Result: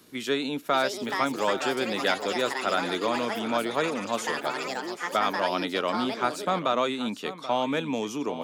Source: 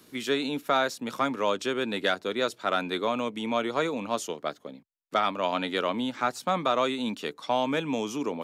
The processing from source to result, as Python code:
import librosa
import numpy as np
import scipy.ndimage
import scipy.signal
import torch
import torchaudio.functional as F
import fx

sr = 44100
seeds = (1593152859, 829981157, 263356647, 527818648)

y = x + 10.0 ** (-13.5 / 20.0) * np.pad(x, (int(782 * sr / 1000.0), 0))[:len(x)]
y = fx.echo_pitch(y, sr, ms=629, semitones=6, count=3, db_per_echo=-6.0)